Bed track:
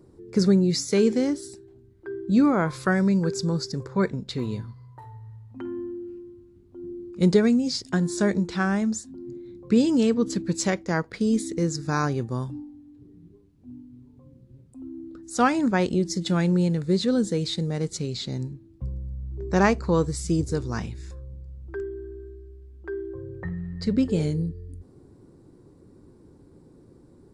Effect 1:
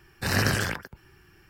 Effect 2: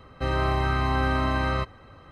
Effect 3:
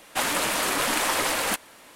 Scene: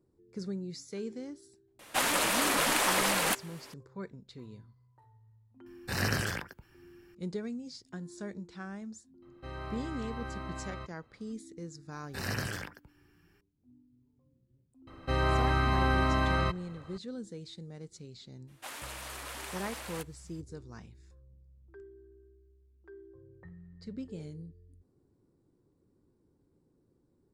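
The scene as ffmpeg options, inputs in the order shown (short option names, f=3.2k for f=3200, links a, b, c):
-filter_complex "[3:a]asplit=2[a][b];[1:a]asplit=2[c][d];[2:a]asplit=2[e][f];[0:a]volume=-18.5dB[g];[f]highshelf=f=4.1k:g=3[h];[b]lowshelf=f=230:g=-11[i];[a]atrim=end=1.95,asetpts=PTS-STARTPTS,volume=-3dB,afade=t=in:d=0.004:c=hsin,afade=t=out:st=1.946:d=0.004:c=hsin,adelay=1790[j];[c]atrim=end=1.49,asetpts=PTS-STARTPTS,volume=-6.5dB,afade=t=in:d=0.004:c=hsin,afade=t=out:st=1.486:d=0.004:c=hsin,adelay=5660[k];[e]atrim=end=2.11,asetpts=PTS-STARTPTS,volume=-16.5dB,afade=t=in:d=0.004:c=hsin,afade=t=out:st=2.106:d=0.004:c=hsin,adelay=406602S[l];[d]atrim=end=1.49,asetpts=PTS-STARTPTS,volume=-11dB,afade=t=in:d=0.004:c=hsin,afade=t=out:st=1.486:d=0.004:c=hsin,adelay=11920[m];[h]atrim=end=2.11,asetpts=PTS-STARTPTS,volume=-3dB,afade=t=in:d=0.004:c=hsin,afade=t=out:st=2.106:d=0.004:c=hsin,adelay=14870[n];[i]atrim=end=1.95,asetpts=PTS-STARTPTS,volume=-17.5dB,afade=t=in:d=0.02,afade=t=out:st=1.93:d=0.02,adelay=18470[o];[g][j][k][l][m][n][o]amix=inputs=7:normalize=0"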